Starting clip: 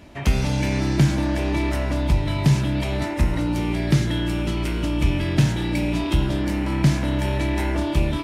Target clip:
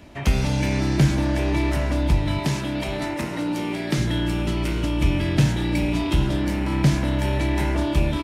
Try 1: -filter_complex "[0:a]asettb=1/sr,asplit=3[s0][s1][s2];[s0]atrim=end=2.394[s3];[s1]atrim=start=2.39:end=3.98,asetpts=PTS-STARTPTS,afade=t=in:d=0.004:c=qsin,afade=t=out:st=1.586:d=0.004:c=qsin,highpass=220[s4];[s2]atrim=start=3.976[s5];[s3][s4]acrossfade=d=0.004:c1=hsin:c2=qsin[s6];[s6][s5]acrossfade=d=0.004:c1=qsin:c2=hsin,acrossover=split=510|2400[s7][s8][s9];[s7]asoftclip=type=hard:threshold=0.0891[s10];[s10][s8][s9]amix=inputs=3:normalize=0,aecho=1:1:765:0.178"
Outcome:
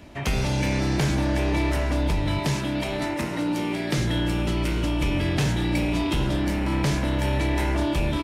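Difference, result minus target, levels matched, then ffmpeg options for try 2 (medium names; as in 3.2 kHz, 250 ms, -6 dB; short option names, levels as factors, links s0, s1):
hard clipper: distortion +18 dB
-filter_complex "[0:a]asettb=1/sr,asplit=3[s0][s1][s2];[s0]atrim=end=2.394[s3];[s1]atrim=start=2.39:end=3.98,asetpts=PTS-STARTPTS,afade=t=in:d=0.004:c=qsin,afade=t=out:st=1.586:d=0.004:c=qsin,highpass=220[s4];[s2]atrim=start=3.976[s5];[s3][s4]acrossfade=d=0.004:c1=hsin:c2=qsin[s6];[s6][s5]acrossfade=d=0.004:c1=qsin:c2=hsin,acrossover=split=510|2400[s7][s8][s9];[s7]asoftclip=type=hard:threshold=0.282[s10];[s10][s8][s9]amix=inputs=3:normalize=0,aecho=1:1:765:0.178"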